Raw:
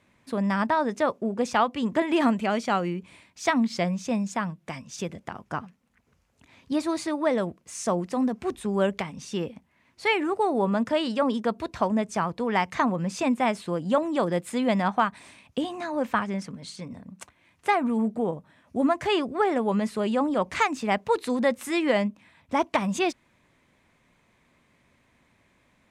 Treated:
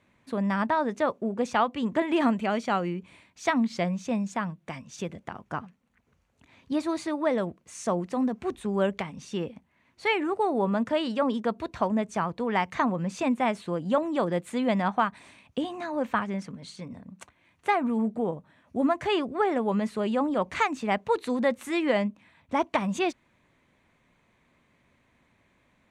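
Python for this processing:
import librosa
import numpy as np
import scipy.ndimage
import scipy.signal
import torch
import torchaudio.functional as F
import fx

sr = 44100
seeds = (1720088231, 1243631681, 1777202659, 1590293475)

y = fx.high_shelf(x, sr, hz=6700.0, db=-7.0)
y = fx.notch(y, sr, hz=5100.0, q=12.0)
y = F.gain(torch.from_numpy(y), -1.5).numpy()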